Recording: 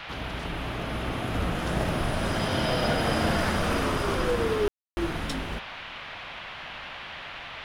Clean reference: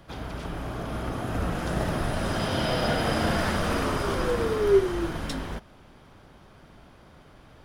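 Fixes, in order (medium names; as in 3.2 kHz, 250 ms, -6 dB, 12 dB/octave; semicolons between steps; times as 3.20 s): room tone fill 4.68–4.97 s; noise print and reduce 12 dB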